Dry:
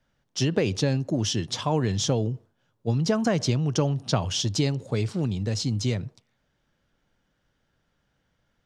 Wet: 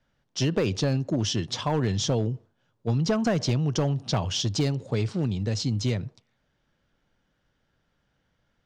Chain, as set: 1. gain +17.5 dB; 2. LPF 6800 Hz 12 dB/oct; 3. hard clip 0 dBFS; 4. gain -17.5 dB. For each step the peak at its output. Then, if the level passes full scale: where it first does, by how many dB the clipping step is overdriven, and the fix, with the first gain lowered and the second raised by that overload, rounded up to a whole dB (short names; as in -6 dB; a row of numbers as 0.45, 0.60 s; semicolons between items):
+10.0, +10.0, 0.0, -17.5 dBFS; step 1, 10.0 dB; step 1 +7.5 dB, step 4 -7.5 dB